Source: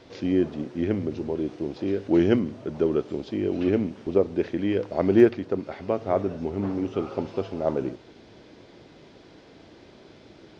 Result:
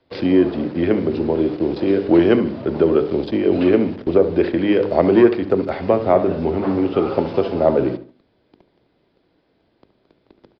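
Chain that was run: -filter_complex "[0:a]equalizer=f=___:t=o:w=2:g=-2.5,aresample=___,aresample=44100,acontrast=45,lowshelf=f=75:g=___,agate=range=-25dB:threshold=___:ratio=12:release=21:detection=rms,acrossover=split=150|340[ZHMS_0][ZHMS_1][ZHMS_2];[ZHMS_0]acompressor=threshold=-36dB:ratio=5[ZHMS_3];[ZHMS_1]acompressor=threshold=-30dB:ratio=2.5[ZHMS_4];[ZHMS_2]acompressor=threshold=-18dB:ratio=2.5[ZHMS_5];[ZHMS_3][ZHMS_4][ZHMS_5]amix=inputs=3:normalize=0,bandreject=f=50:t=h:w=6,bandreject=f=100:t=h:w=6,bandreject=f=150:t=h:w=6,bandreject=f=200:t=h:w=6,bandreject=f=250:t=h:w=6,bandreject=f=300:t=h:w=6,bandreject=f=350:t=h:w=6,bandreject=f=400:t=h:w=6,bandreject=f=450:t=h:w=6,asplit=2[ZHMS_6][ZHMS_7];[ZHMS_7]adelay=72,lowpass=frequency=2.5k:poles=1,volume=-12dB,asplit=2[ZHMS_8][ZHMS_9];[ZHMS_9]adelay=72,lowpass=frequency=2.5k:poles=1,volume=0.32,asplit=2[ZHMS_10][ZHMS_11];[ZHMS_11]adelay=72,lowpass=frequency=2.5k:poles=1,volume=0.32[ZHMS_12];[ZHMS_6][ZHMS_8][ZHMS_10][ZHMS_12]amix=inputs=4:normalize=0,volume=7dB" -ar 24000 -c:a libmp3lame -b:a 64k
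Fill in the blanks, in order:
3.2k, 11025, 2.5, -40dB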